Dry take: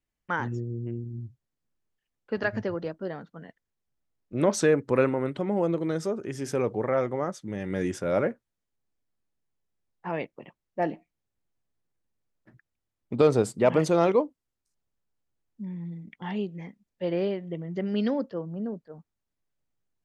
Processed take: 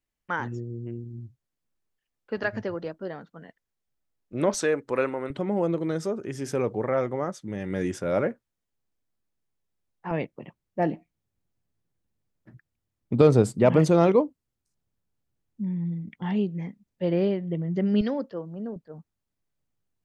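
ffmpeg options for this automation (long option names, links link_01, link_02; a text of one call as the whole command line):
ffmpeg -i in.wav -af "asetnsamples=nb_out_samples=441:pad=0,asendcmd='4.54 equalizer g -11;5.3 equalizer g 1;10.11 equalizer g 8.5;18.01 equalizer g -3;18.76 equalizer g 4.5',equalizer=frequency=110:width_type=o:width=2.8:gain=-2.5" out.wav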